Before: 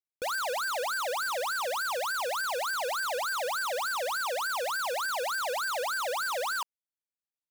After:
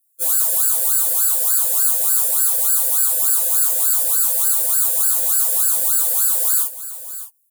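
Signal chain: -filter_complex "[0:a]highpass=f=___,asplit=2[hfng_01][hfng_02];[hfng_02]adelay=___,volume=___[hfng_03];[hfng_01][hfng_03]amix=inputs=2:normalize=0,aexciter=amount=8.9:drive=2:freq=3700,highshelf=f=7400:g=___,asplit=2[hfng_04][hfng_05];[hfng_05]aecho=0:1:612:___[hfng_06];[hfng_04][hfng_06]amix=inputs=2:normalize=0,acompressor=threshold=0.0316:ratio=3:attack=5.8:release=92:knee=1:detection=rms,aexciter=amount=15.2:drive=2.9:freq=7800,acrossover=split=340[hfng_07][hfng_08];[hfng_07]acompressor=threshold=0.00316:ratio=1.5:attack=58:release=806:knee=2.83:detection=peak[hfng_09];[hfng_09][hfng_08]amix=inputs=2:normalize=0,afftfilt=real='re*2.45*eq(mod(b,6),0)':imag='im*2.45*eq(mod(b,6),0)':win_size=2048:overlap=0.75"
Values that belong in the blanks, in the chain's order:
62, 42, 0.473, -11.5, 0.106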